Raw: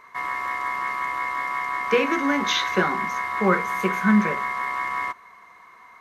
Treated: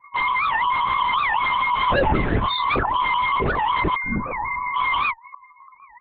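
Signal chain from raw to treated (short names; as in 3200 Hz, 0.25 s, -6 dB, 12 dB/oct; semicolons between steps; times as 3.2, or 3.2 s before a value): dynamic EQ 170 Hz, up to -8 dB, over -38 dBFS, Q 1.3; fuzz box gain 37 dB, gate -45 dBFS; loudest bins only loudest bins 4; vibrato 4.4 Hz 25 cents; 3.95–4.76 resonator 55 Hz, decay 2 s, harmonics all, mix 60%; wavefolder -16 dBFS; 1.72–2.85 doubler 27 ms -6 dB; LPC vocoder at 8 kHz whisper; record warp 78 rpm, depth 250 cents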